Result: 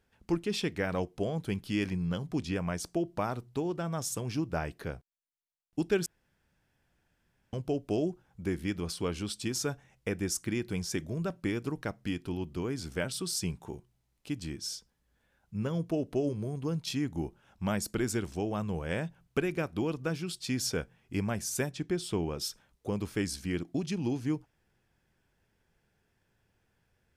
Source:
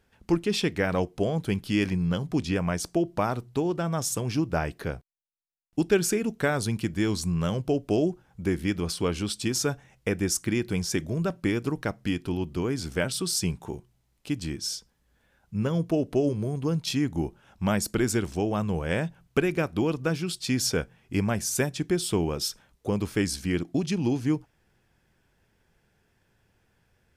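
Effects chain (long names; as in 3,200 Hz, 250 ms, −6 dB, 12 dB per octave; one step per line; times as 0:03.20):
0:06.06–0:07.53: fill with room tone
0:21.71–0:22.38: high-shelf EQ 9,000 Hz −10.5 dB
level −6 dB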